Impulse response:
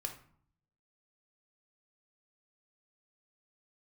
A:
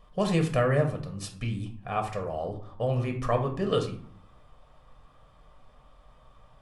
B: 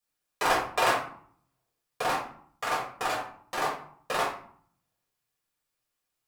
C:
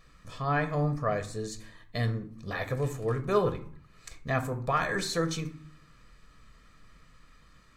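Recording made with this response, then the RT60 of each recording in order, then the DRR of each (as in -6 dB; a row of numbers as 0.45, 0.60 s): A; 0.55, 0.55, 0.55 s; 3.5, -6.5, 7.5 dB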